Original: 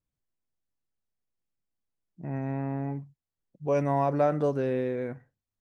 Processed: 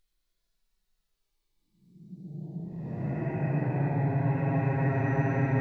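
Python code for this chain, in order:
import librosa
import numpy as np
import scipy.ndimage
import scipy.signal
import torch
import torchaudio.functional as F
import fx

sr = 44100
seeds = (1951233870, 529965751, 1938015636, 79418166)

y = fx.paulstretch(x, sr, seeds[0], factor=17.0, window_s=0.05, from_s=2.06)
y = fx.spec_repair(y, sr, seeds[1], start_s=1.42, length_s=0.98, low_hz=840.0, high_hz=3400.0, source='before')
y = fx.graphic_eq_15(y, sr, hz=(100, 250, 630, 4000), db=(-5, -9, -4, 8))
y = y * 10.0 ** (9.0 / 20.0)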